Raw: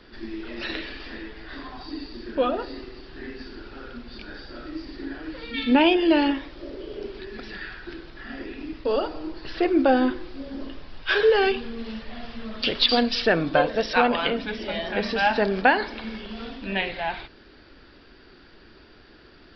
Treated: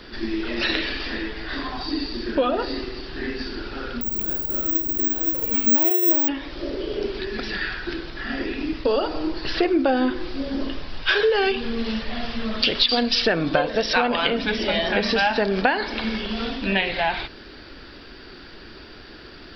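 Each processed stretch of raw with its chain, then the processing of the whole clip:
4.01–6.28 s: median filter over 25 samples + careless resampling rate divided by 2×, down filtered, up zero stuff
whole clip: treble shelf 3.7 kHz +6 dB; compression 4:1, threshold -26 dBFS; trim +8 dB

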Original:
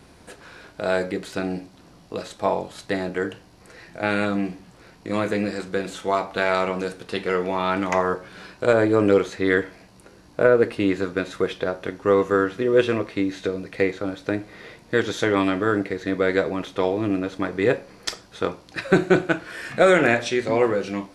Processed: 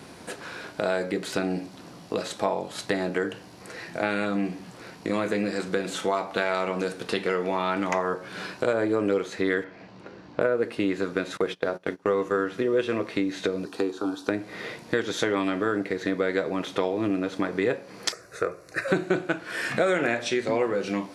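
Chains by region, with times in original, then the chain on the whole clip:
9.64–10.41 s: companded quantiser 8-bit + distance through air 190 m
11.37–12.49 s: hum notches 60/120/180/240/300/360/420 Hz + gate -34 dBFS, range -21 dB
13.65–14.29 s: high-pass 110 Hz + static phaser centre 560 Hz, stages 6
18.12–18.88 s: peaking EQ 5 kHz -4.5 dB 0.23 oct + static phaser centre 880 Hz, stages 6
whole clip: high-pass 130 Hz 12 dB/octave; compression 3:1, threshold -31 dBFS; trim +6 dB

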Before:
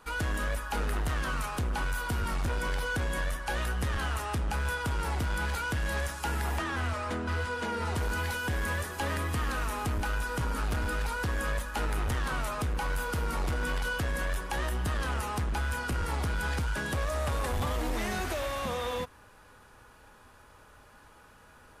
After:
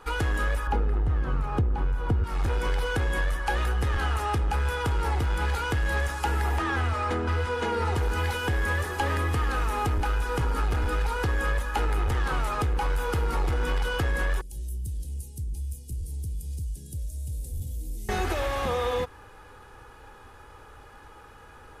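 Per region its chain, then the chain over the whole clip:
0.67–2.24 s: high-pass 84 Hz + tilt EQ -4 dB/octave
14.41–18.09 s: Chebyshev band-stop 140–9700 Hz + bass shelf 430 Hz -9 dB
whole clip: treble shelf 3.7 kHz -7.5 dB; comb 2.4 ms, depth 43%; compression, threshold -29 dBFS; trim +6.5 dB

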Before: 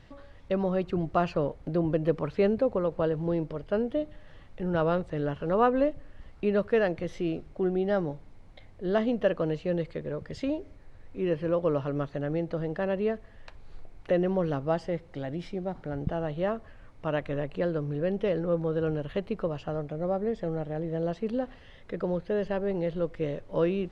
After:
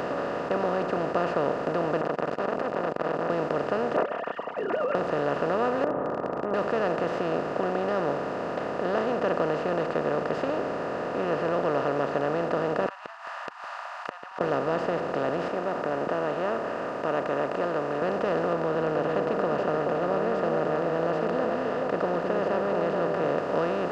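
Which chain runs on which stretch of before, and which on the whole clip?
2.01–3.30 s: compression, threshold -37 dBFS + transformer saturation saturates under 1.1 kHz
3.96–4.95 s: formants replaced by sine waves + comb 4.4 ms, depth 82%
5.84–6.54 s: rippled Chebyshev low-pass 1.3 kHz, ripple 6 dB + transient shaper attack -9 dB, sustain +10 dB
12.86–14.41 s: steep high-pass 930 Hz 96 dB/octave + inverted gate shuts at -37 dBFS, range -41 dB
15.48–18.02 s: high-pass 920 Hz 6 dB/octave + peaking EQ 4.1 kHz -12 dB 1.1 oct + comb 3.2 ms, depth 39%
18.53–23.38 s: treble shelf 2.1 kHz -11.5 dB + repeats whose band climbs or falls 214 ms, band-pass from 210 Hz, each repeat 1.4 oct, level -2.5 dB
whole clip: spectral levelling over time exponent 0.2; high-pass 70 Hz; bass shelf 240 Hz -4 dB; trim -7.5 dB

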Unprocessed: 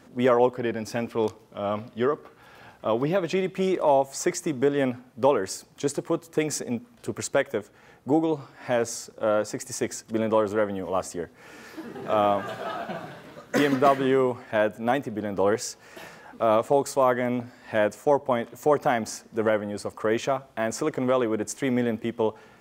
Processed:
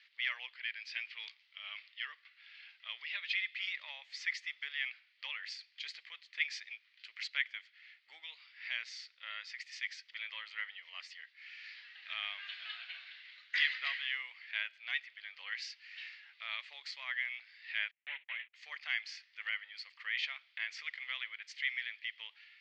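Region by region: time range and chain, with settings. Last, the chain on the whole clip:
17.91–18.54 s: CVSD coder 16 kbps + gate -40 dBFS, range -36 dB + distance through air 120 m
whole clip: Chebyshev band-pass 2–4.6 kHz, order 3; treble shelf 3.2 kHz -8.5 dB; trim +6 dB

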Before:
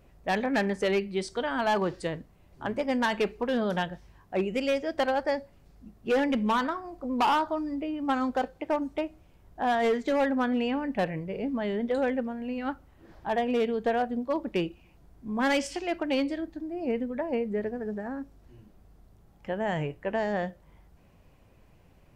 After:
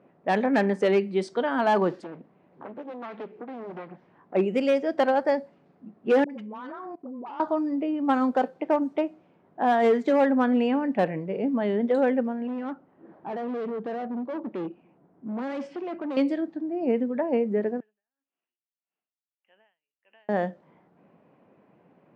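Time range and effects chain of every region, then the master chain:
1.98–4.35 s: compression 3:1, threshold -44 dBFS + loudspeaker Doppler distortion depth 0.77 ms
6.24–7.40 s: phase dispersion highs, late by 60 ms, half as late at 660 Hz + level held to a coarse grid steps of 21 dB
12.47–16.17 s: hard clipper -33.5 dBFS + treble shelf 2 kHz -10 dB
17.80–20.29 s: compression 2:1, threshold -32 dBFS + band-pass filter 2.8 kHz, Q 8.3 + logarithmic tremolo 1.7 Hz, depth 34 dB
whole clip: high-pass 180 Hz 24 dB/octave; level-controlled noise filter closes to 2.2 kHz, open at -24.5 dBFS; treble shelf 2.1 kHz -11 dB; trim +5.5 dB

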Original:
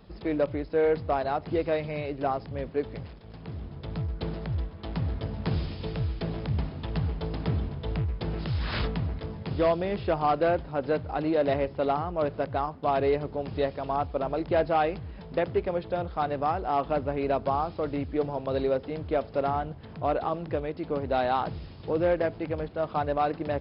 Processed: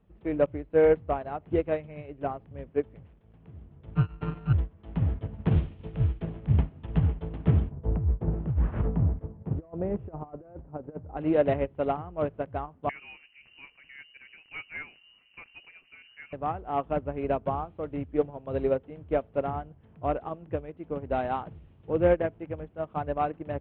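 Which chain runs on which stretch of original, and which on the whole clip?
3.95–4.53 s: sorted samples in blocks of 32 samples + comb 6.7 ms, depth 74% + tape noise reduction on one side only decoder only
7.71–11.17 s: low-pass 1 kHz + compressor with a negative ratio -28 dBFS, ratio -0.5
12.89–16.33 s: peaking EQ 300 Hz -10 dB 2.7 oct + frequency inversion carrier 2.9 kHz
whole clip: steep low-pass 3.2 kHz 48 dB/octave; bass shelf 380 Hz +6.5 dB; upward expansion 2.5:1, over -31 dBFS; trim +2.5 dB

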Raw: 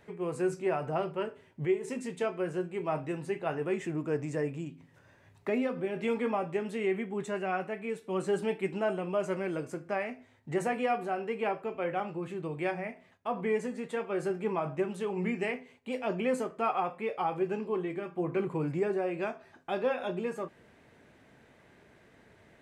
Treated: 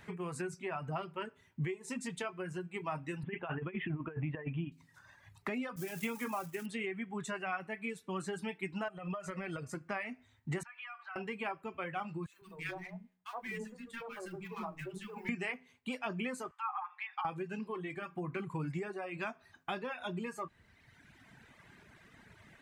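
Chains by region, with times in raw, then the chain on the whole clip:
3.23–4.72 s: Chebyshev low-pass 3.3 kHz, order 6 + bass shelf 140 Hz +5.5 dB + compressor with a negative ratio -33 dBFS, ratio -0.5
5.76–6.66 s: zero-crossing glitches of -33 dBFS + expander -38 dBFS + peaking EQ 4.2 kHz -7 dB 0.47 oct
8.88–9.75 s: treble shelf 4.5 kHz -6 dB + comb 1.6 ms, depth 37% + compression 10:1, threshold -33 dBFS
10.63–11.16 s: high-pass 1.1 kHz 24 dB/octave + compression 8:1, threshold -44 dBFS + distance through air 220 m
12.26–15.29 s: companding laws mixed up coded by A + feedback comb 92 Hz, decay 0.51 s + three bands offset in time highs, mids, lows 70/150 ms, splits 350/1200 Hz
16.51–17.25 s: low-pass that closes with the level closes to 1.7 kHz, closed at -27 dBFS + compression 10:1, threshold -33 dBFS + brick-wall FIR high-pass 750 Hz
whole clip: reverb removal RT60 1.5 s; compression 3:1, threshold -38 dBFS; FFT filter 180 Hz 0 dB, 510 Hz -10 dB, 1.1 kHz +1 dB; trim +5 dB

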